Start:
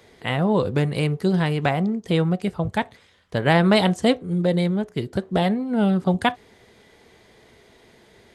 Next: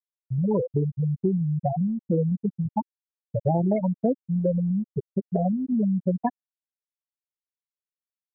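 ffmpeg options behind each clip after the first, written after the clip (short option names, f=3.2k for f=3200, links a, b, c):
-filter_complex "[0:a]afftfilt=real='re*gte(hypot(re,im),0.562)':imag='im*gte(hypot(re,im),0.562)':win_size=1024:overlap=0.75,acrossover=split=450|1800[a][b][c];[a]acompressor=threshold=-29dB:ratio=4[d];[b]acompressor=threshold=-33dB:ratio=4[e];[c]acompressor=threshold=-53dB:ratio=4[f];[d][e][f]amix=inputs=3:normalize=0,volume=5dB"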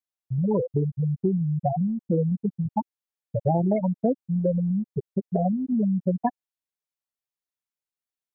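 -af "equalizer=f=750:t=o:w=0.25:g=2.5"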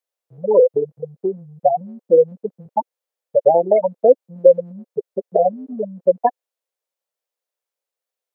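-af "highpass=f=510:t=q:w=4.1,volume=4.5dB"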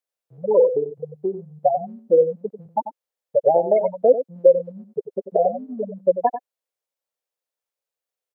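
-af "aecho=1:1:93:0.282,volume=-3dB"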